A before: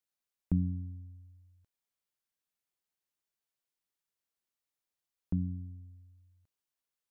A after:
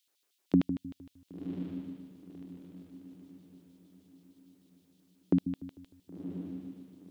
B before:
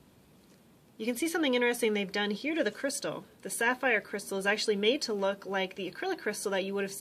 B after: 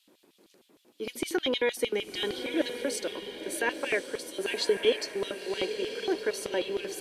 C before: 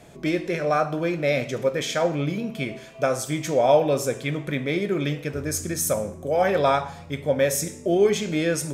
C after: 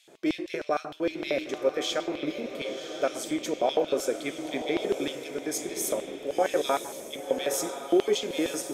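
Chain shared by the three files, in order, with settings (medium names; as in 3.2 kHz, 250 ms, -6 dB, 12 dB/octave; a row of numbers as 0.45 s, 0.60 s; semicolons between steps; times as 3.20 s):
LFO high-pass square 6.5 Hz 340–3300 Hz; echo that smears into a reverb 1042 ms, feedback 40%, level -8.5 dB; peak normalisation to -12 dBFS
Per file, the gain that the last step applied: +12.5 dB, -2.0 dB, -6.5 dB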